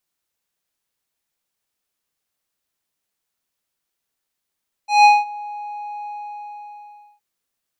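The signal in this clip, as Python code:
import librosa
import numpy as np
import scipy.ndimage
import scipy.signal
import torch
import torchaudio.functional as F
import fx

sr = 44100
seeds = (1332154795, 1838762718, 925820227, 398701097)

y = fx.sub_voice(sr, note=80, wave='square', cutoff_hz=1400.0, q=0.99, env_oct=2.0, env_s=0.45, attack_ms=165.0, decay_s=0.2, sustain_db=-22.5, release_s=1.14, note_s=1.18, slope=12)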